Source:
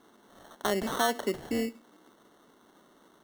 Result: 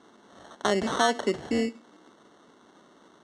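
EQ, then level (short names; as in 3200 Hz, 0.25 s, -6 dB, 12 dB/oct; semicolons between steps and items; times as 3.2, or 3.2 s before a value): HPF 59 Hz; LPF 7900 Hz 24 dB/oct; +4.0 dB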